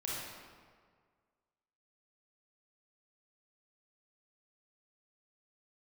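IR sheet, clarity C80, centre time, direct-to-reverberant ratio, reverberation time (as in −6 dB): 0.0 dB, 115 ms, −6.5 dB, 1.8 s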